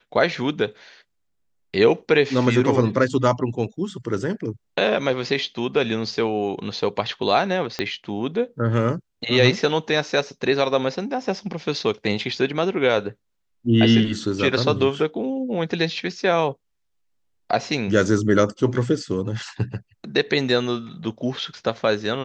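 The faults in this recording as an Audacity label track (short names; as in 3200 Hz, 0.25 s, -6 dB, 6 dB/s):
7.790000	7.790000	pop -10 dBFS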